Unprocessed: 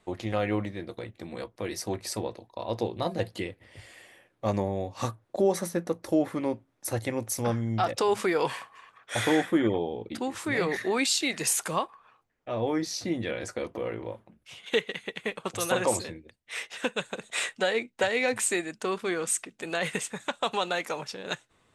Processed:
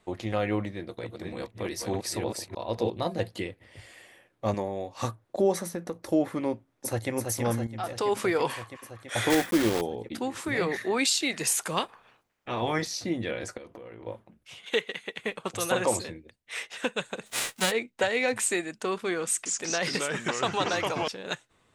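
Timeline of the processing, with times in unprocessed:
0.72–2.9 reverse delay 0.305 s, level -2.5 dB
4.54–5.03 bell 85 Hz -9.5 dB 2.8 oct
5.55–5.97 compressor, threshold -28 dBFS
6.51–7.11 echo throw 0.33 s, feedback 80%, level -5 dB
7.67–8.22 fade in linear, from -13.5 dB
9.3–9.82 block floating point 3-bit
10.48–11.1 three-band expander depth 40%
11.76–12.86 spectral limiter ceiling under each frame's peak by 17 dB
13.57–14.07 compressor 10:1, threshold -40 dBFS
14.71–15.19 HPF 270 Hz 6 dB/oct
17.25–17.7 spectral whitening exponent 0.3
19.27–21.08 echoes that change speed 0.184 s, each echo -3 st, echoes 3

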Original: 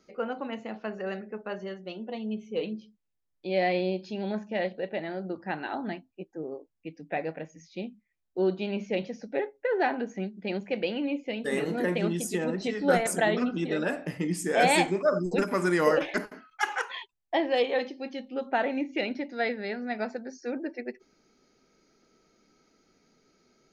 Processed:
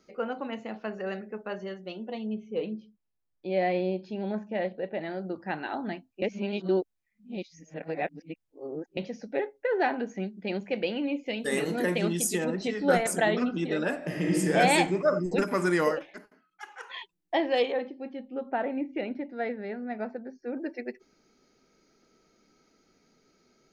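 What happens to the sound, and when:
2.27–5.01 high shelf 3200 Hz -12 dB
6.22–8.97 reverse
11.26–12.45 high shelf 4100 Hz +9 dB
13.97–14.37 reverb throw, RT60 2.6 s, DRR -4 dB
15.8–17.01 dip -16 dB, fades 0.23 s
17.72–20.57 tape spacing loss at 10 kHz 37 dB

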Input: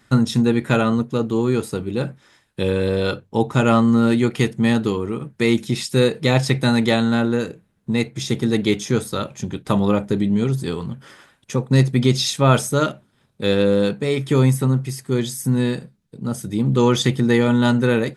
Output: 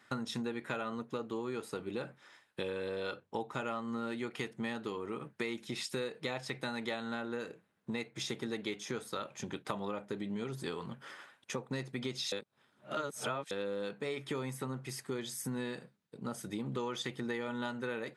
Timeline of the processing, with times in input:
12.32–13.51 reverse
whole clip: HPF 930 Hz 6 dB/oct; high shelf 3400 Hz -11 dB; compressor 6:1, threshold -35 dBFS

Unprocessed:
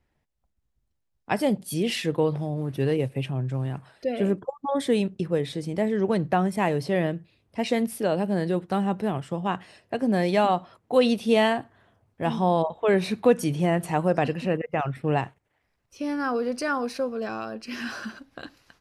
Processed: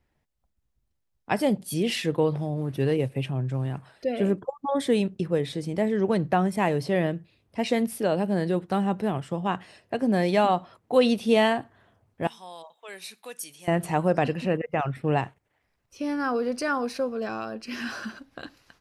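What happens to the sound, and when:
12.27–13.68 differentiator

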